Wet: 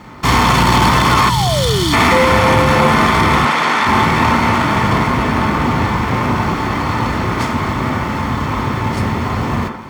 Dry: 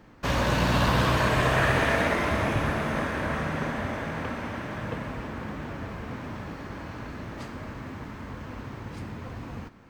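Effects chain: comb filter that takes the minimum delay 0.91 ms; in parallel at +1 dB: gain riding within 4 dB; on the sum: hard clipper -21 dBFS, distortion -9 dB; high-pass 56 Hz; 2.11–2.75 s: whistle 520 Hz -22 dBFS; 3.45–3.87 s: frequency weighting A; on a send at -1.5 dB: reverberation RT60 0.55 s, pre-delay 22 ms; 1.30–1.93 s: on the sum: time-frequency box 210–2900 Hz -14 dB; feedback comb 880 Hz, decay 0.17 s, harmonics all, mix 70%; 1.10–1.96 s: painted sound fall 270–1500 Hz -40 dBFS; loudness maximiser +22 dB; trim -1 dB

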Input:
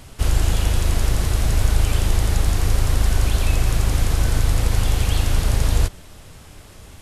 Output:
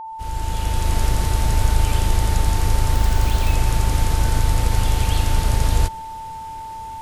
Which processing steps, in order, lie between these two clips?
fade-in on the opening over 0.99 s; 2.94–3.54 s: careless resampling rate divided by 2×, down filtered, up hold; whistle 890 Hz -30 dBFS

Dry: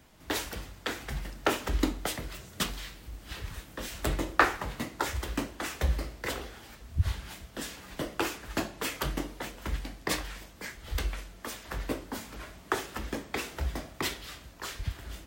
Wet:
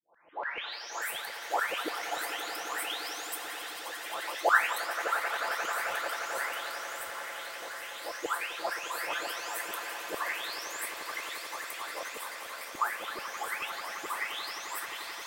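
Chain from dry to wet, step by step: delay that grows with frequency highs late, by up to 718 ms; LFO high-pass saw down 6.9 Hz 500–2200 Hz; echo with a slow build-up 88 ms, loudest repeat 8, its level -14.5 dB

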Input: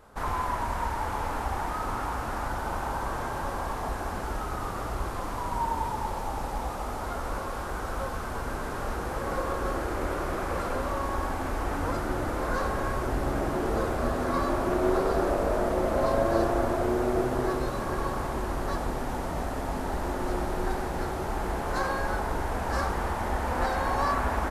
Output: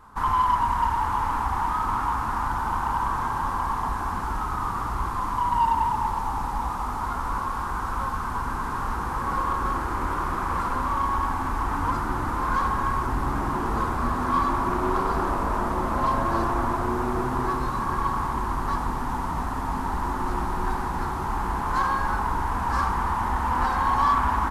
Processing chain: FFT filter 250 Hz 0 dB, 610 Hz -13 dB, 990 Hz +9 dB, 1.4 kHz +1 dB, 2.3 kHz -4 dB; in parallel at -7 dB: hard clipper -24.5 dBFS, distortion -12 dB

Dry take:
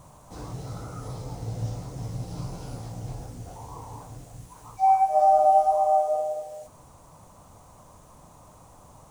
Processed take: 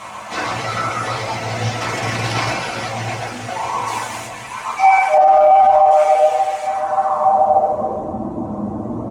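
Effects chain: delay 131 ms -3.5 dB; reverb removal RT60 1 s; 1.81–2.53 s: power-law waveshaper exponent 0.7; 5.17–5.91 s: RIAA curve playback; feedback delay 579 ms, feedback 56%, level -15 dB; band-pass sweep 2.3 kHz -> 290 Hz, 6.62–8.16 s; 3.86–4.26 s: treble shelf 4.1 kHz -> 5.9 kHz +10.5 dB; reverberation RT60 0.35 s, pre-delay 5 ms, DRR -2.5 dB; loudness maximiser +34.5 dB; trim -3 dB

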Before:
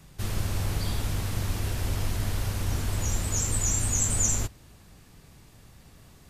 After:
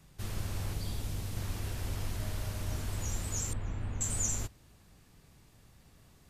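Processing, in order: 0.73–1.37 s: peaking EQ 1.4 kHz -5 dB 1.8 oct; 2.18–2.83 s: whistle 620 Hz -45 dBFS; 3.53–4.01 s: distance through air 460 m; trim -7.5 dB

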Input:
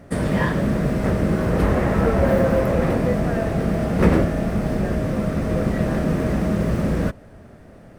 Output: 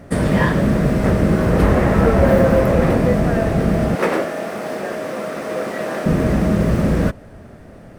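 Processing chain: 3.95–6.06 s: high-pass 460 Hz 12 dB/octave; trim +4.5 dB

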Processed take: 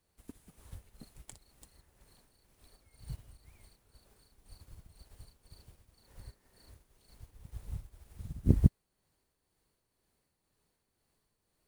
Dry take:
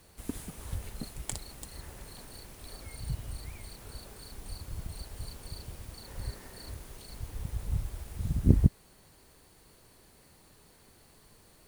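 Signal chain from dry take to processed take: tremolo triangle 2 Hz, depth 50%; upward expansion 1.5:1, over -53 dBFS

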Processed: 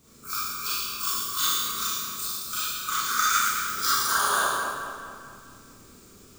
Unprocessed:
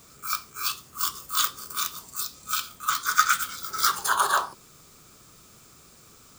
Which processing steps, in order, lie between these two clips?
resonant low shelf 510 Hz +6 dB, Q 1.5; harmonic-percussive split harmonic -11 dB; on a send: two-band feedback delay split 2.8 kHz, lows 217 ms, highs 111 ms, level -6 dB; on the sum: Schroeder reverb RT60 1.1 s, combs from 28 ms, DRR -7.5 dB; trim -6 dB

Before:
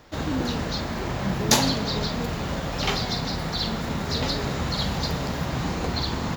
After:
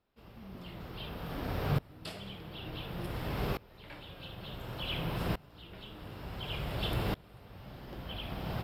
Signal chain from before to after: dynamic bell 7.9 kHz, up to -5 dB, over -48 dBFS, Q 2; wide varispeed 0.737×; sawtooth tremolo in dB swelling 0.56 Hz, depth 26 dB; trim -3 dB

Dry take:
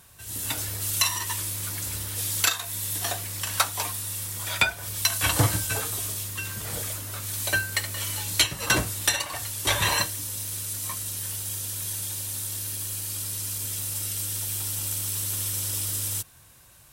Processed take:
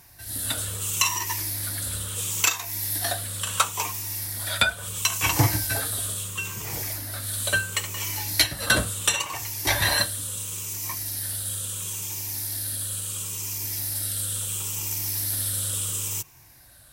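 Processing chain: drifting ripple filter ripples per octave 0.74, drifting -0.73 Hz, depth 9 dB

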